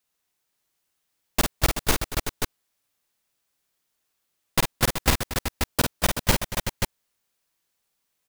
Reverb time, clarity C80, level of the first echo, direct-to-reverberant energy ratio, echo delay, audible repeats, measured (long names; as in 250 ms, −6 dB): no reverb audible, no reverb audible, −6.0 dB, no reverb audible, 50 ms, 4